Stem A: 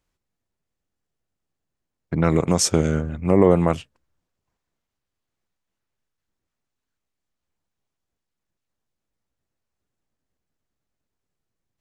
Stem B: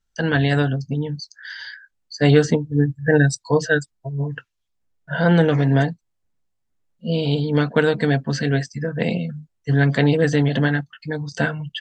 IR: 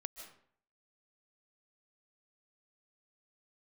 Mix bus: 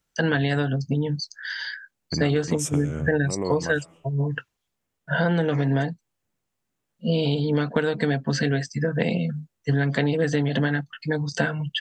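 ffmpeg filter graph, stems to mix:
-filter_complex "[0:a]acompressor=threshold=0.141:ratio=6,aexciter=amount=1.2:drive=1.8:freq=2300,volume=0.531,asplit=2[s0][s1];[s1]volume=0.376[s2];[1:a]highpass=110,volume=1.41[s3];[2:a]atrim=start_sample=2205[s4];[s2][s4]afir=irnorm=-1:irlink=0[s5];[s0][s3][s5]amix=inputs=3:normalize=0,acompressor=threshold=0.112:ratio=6"

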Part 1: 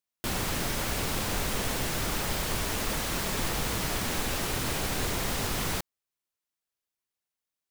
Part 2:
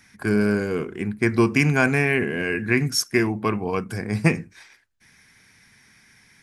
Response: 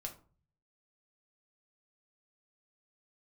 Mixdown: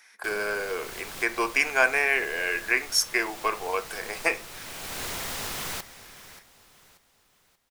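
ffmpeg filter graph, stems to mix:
-filter_complex "[0:a]lowshelf=f=450:g=-10.5,volume=0.794,asplit=3[s0][s1][s2];[s1]volume=0.299[s3];[s2]volume=0.2[s4];[1:a]highpass=f=500:w=0.5412,highpass=f=500:w=1.3066,volume=0.708,asplit=3[s5][s6][s7];[s6]volume=0.668[s8];[s7]apad=whole_len=339779[s9];[s0][s9]sidechaincompress=threshold=0.00631:ratio=8:attack=7.5:release=443[s10];[2:a]atrim=start_sample=2205[s11];[s3][s8]amix=inputs=2:normalize=0[s12];[s12][s11]afir=irnorm=-1:irlink=0[s13];[s4]aecho=0:1:583|1166|1749|2332|2915:1|0.38|0.144|0.0549|0.0209[s14];[s10][s5][s13][s14]amix=inputs=4:normalize=0"

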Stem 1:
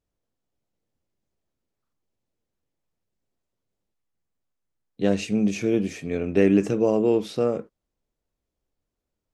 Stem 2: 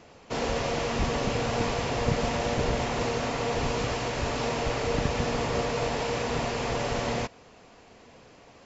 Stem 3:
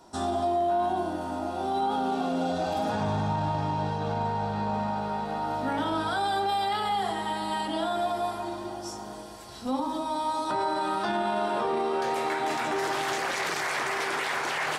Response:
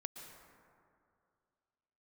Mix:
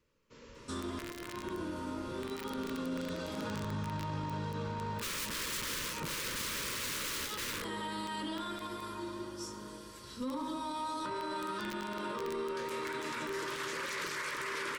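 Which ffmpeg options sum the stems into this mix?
-filter_complex "[0:a]alimiter=limit=0.251:level=0:latency=1:release=396,volume=0.944,asplit=3[s0][s1][s2];[s1]volume=0.15[s3];[1:a]volume=0.944,asplit=2[s4][s5];[s5]volume=0.075[s6];[2:a]asoftclip=type=tanh:threshold=0.0944,adelay=550,volume=0.631[s7];[s2]apad=whole_len=381717[s8];[s4][s8]sidechaingate=range=0.0178:threshold=0.0316:ratio=16:detection=peak[s9];[3:a]atrim=start_sample=2205[s10];[s3][s6]amix=inputs=2:normalize=0[s11];[s11][s10]afir=irnorm=-1:irlink=0[s12];[s0][s9][s7][s12]amix=inputs=4:normalize=0,aeval=exprs='(mod(20*val(0)+1,2)-1)/20':c=same,asuperstop=centerf=740:order=4:qfactor=2,alimiter=level_in=1.88:limit=0.0631:level=0:latency=1:release=17,volume=0.531"

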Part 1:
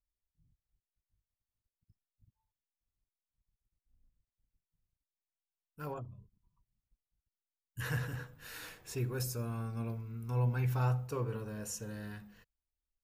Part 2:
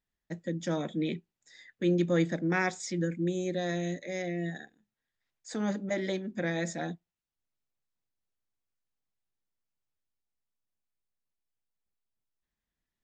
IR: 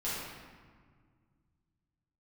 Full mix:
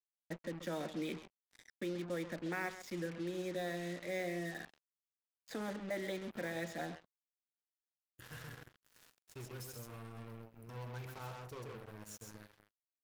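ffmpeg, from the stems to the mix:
-filter_complex "[0:a]adelay=400,volume=0.282,asplit=2[s0][s1];[s1]volume=0.631[s2];[1:a]lowpass=3800,alimiter=level_in=1.33:limit=0.0631:level=0:latency=1:release=444,volume=0.75,volume=0.841,asplit=3[s3][s4][s5];[s4]volume=0.224[s6];[s5]apad=whole_len=592683[s7];[s0][s7]sidechaincompress=threshold=0.00224:ratio=10:attack=28:release=1450[s8];[s2][s6]amix=inputs=2:normalize=0,aecho=0:1:132:1[s9];[s8][s3][s9]amix=inputs=3:normalize=0,acrossover=split=370[s10][s11];[s10]acompressor=threshold=0.00282:ratio=2[s12];[s12][s11]amix=inputs=2:normalize=0,acrusher=bits=7:mix=0:aa=0.5"

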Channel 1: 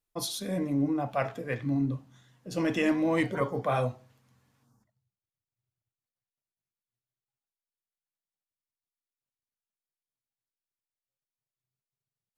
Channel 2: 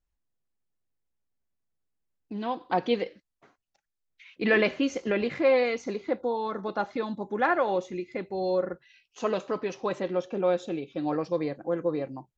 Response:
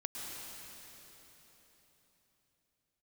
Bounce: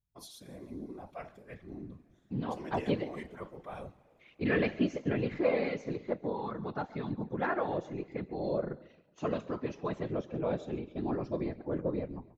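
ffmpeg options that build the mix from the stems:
-filter_complex "[0:a]volume=0.299,asplit=3[s0][s1][s2];[s1]volume=0.1[s3];[s2]volume=0.0668[s4];[1:a]bass=f=250:g=11,treble=f=4000:g=-5,agate=range=0.447:threshold=0.002:ratio=16:detection=peak,volume=0.794,asplit=2[s5][s6];[s6]volume=0.112[s7];[2:a]atrim=start_sample=2205[s8];[s3][s8]afir=irnorm=-1:irlink=0[s9];[s4][s7]amix=inputs=2:normalize=0,aecho=0:1:137|274|411|548|685|822:1|0.44|0.194|0.0852|0.0375|0.0165[s10];[s0][s5][s9][s10]amix=inputs=4:normalize=0,afftfilt=real='hypot(re,im)*cos(2*PI*random(0))':imag='hypot(re,im)*sin(2*PI*random(1))':win_size=512:overlap=0.75"

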